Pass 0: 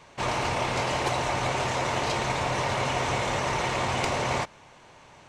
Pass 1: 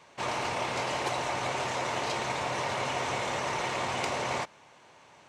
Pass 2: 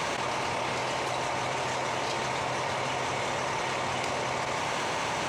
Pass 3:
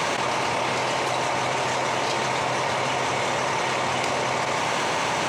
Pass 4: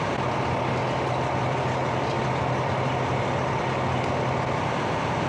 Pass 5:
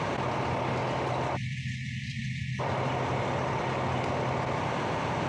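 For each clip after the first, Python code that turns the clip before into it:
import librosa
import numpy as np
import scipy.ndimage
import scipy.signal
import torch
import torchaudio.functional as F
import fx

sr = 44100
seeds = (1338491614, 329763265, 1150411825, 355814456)

y1 = fx.highpass(x, sr, hz=210.0, slope=6)
y1 = F.gain(torch.from_numpy(y1), -3.5).numpy()
y2 = y1 + 10.0 ** (-20.5 / 20.0) * np.pad(y1, (int(147 * sr / 1000.0), 0))[:len(y1)]
y2 = fx.env_flatten(y2, sr, amount_pct=100)
y2 = F.gain(torch.from_numpy(y2), -2.0).numpy()
y3 = scipy.signal.sosfilt(scipy.signal.butter(2, 100.0, 'highpass', fs=sr, output='sos'), y2)
y3 = F.gain(torch.from_numpy(y3), 6.0).numpy()
y4 = fx.riaa(y3, sr, side='playback')
y4 = F.gain(torch.from_numpy(y4), -2.5).numpy()
y5 = fx.spec_erase(y4, sr, start_s=1.36, length_s=1.23, low_hz=240.0, high_hz=1700.0)
y5 = F.gain(torch.from_numpy(y5), -4.5).numpy()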